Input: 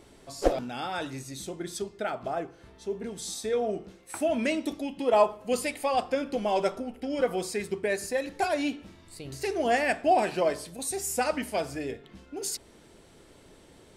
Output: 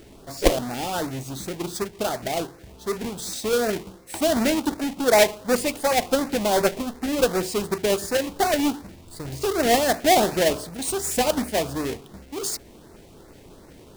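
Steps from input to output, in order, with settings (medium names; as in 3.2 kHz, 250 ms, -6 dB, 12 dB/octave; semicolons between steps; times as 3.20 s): square wave that keeps the level; LFO notch saw up 2.7 Hz 970–3500 Hz; trim +2.5 dB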